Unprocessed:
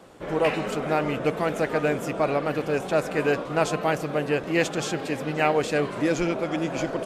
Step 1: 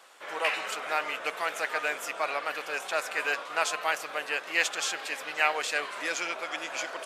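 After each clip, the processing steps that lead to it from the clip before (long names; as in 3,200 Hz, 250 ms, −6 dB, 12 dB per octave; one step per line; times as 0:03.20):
high-pass filter 1,200 Hz 12 dB per octave
level +2.5 dB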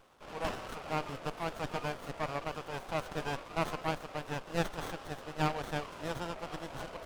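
windowed peak hold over 17 samples
level −5.5 dB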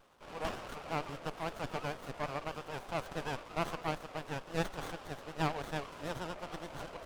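pitch vibrato 8.9 Hz 91 cents
level −2 dB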